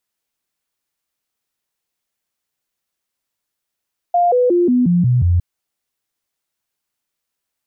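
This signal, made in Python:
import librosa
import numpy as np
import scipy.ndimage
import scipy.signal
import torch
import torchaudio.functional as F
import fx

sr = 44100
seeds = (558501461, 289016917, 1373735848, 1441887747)

y = fx.stepped_sweep(sr, from_hz=701.0, direction='down', per_octave=2, tones=7, dwell_s=0.18, gap_s=0.0, level_db=-10.5)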